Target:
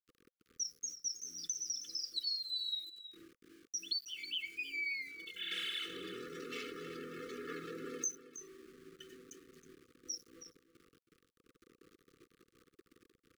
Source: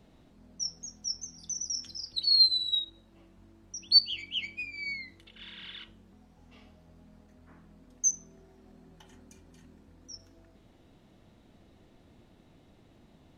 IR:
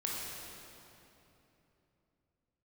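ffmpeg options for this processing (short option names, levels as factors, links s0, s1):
-filter_complex "[0:a]asettb=1/sr,asplit=3[s0][s1][s2];[s0]atrim=end=5.514[s3];[s1]atrim=start=5.51:end=8.12,asetpts=PTS-STARTPTS,afade=t=in:d=0.004:c=qsin,afade=t=out:st=2.606:d=0.004:c=qsin,aeval=exprs='val(0)+0.5*0.00944*sgn(val(0))':c=same[s4];[s2]atrim=start=8.116[s5];[s3][s4]acrossfade=d=0.004:c1=hsin:c2=qsin[s6];[s6][s5]acrossfade=d=0.004:c1=qsin:c2=hsin,highpass=f=200:w=0.5412,highpass=f=200:w=1.3066,afftdn=nr=19:nf=-55,aecho=1:1:2.3:0.96,acompressor=threshold=0.01:ratio=12,aeval=exprs='val(0)*gte(abs(val(0)),0.00112)':c=same,asuperstop=centerf=770:order=20:qfactor=1.2,aecho=1:1:320:0.224,volume=1.5"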